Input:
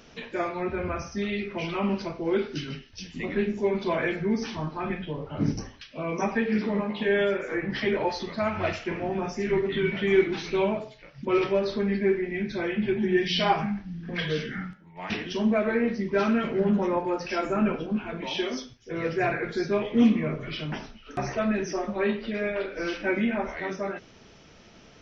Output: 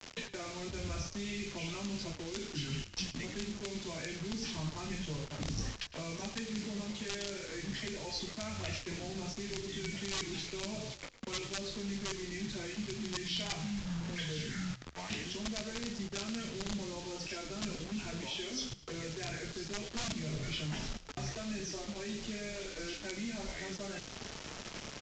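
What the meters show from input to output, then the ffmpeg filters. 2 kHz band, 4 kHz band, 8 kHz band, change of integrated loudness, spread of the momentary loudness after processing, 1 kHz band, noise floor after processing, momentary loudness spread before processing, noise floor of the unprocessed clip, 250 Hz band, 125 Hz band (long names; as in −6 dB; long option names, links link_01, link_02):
−11.5 dB, −3.0 dB, can't be measured, −12.0 dB, 4 LU, −16.0 dB, −50 dBFS, 10 LU, −52 dBFS, −13.5 dB, −7.5 dB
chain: -filter_complex "[0:a]adynamicequalizer=threshold=0.00891:dfrequency=1100:dqfactor=1.1:tfrequency=1100:tqfactor=1.1:attack=5:release=100:ratio=0.375:range=2.5:mode=cutabove:tftype=bell,aeval=exprs='(mod(6.68*val(0)+1,2)-1)/6.68':channel_layout=same,areverse,acompressor=threshold=-41dB:ratio=4,areverse,acrusher=bits=7:mix=0:aa=0.000001,acrossover=split=160|3000[link_01][link_02][link_03];[link_02]acompressor=threshold=-51dB:ratio=6[link_04];[link_01][link_04][link_03]amix=inputs=3:normalize=0,asplit=2[link_05][link_06];[link_06]asplit=4[link_07][link_08][link_09][link_10];[link_07]adelay=108,afreqshift=-56,volume=-16dB[link_11];[link_08]adelay=216,afreqshift=-112,volume=-24dB[link_12];[link_09]adelay=324,afreqshift=-168,volume=-31.9dB[link_13];[link_10]adelay=432,afreqshift=-224,volume=-39.9dB[link_14];[link_11][link_12][link_13][link_14]amix=inputs=4:normalize=0[link_15];[link_05][link_15]amix=inputs=2:normalize=0,aresample=16000,aresample=44100,volume=8dB"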